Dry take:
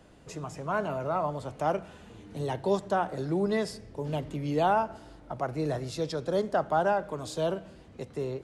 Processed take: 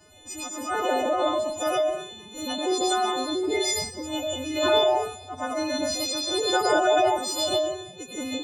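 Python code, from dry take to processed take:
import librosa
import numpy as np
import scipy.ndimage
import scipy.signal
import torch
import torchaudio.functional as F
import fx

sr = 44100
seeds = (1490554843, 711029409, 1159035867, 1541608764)

y = fx.freq_snap(x, sr, grid_st=3)
y = fx.spec_topn(y, sr, count=64)
y = fx.rev_freeverb(y, sr, rt60_s=0.74, hf_ratio=0.9, predelay_ms=65, drr_db=-1.0)
y = fx.pitch_keep_formants(y, sr, semitones=12.0)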